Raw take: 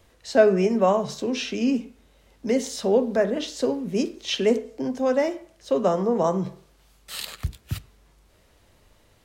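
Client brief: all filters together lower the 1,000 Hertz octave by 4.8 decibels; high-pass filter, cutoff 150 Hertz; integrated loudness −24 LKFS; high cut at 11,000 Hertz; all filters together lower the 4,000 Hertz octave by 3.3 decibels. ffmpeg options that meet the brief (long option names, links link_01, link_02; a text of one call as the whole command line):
ffmpeg -i in.wav -af "highpass=150,lowpass=11000,equalizer=frequency=1000:width_type=o:gain=-7,equalizer=frequency=4000:width_type=o:gain=-4,volume=1.5dB" out.wav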